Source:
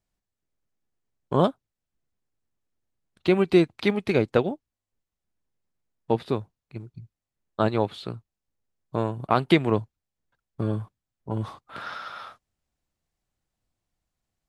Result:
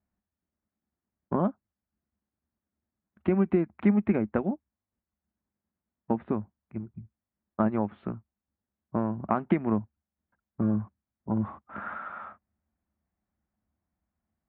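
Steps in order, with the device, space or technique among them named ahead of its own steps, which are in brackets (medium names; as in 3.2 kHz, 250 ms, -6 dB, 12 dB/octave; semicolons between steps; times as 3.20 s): distance through air 370 m; bass amplifier (compression 3:1, threshold -24 dBFS, peak gain reduction 8.5 dB; cabinet simulation 63–2100 Hz, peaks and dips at 73 Hz +8 dB, 130 Hz -10 dB, 210 Hz +9 dB, 460 Hz -7 dB); trim +1.5 dB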